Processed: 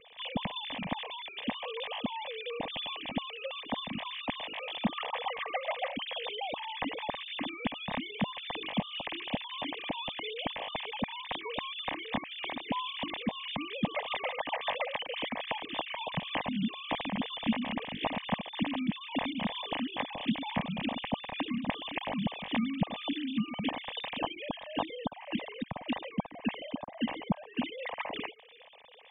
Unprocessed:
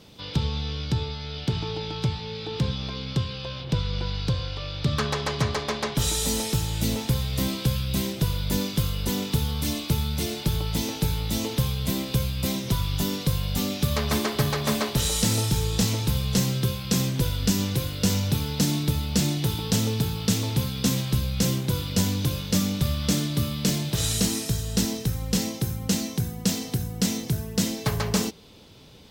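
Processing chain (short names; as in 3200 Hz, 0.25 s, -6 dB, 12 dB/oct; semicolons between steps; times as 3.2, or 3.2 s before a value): sine-wave speech; fixed phaser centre 1400 Hz, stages 6; in parallel at +1 dB: compressor, threshold -34 dBFS, peak gain reduction 16 dB; on the sum: gain -8 dB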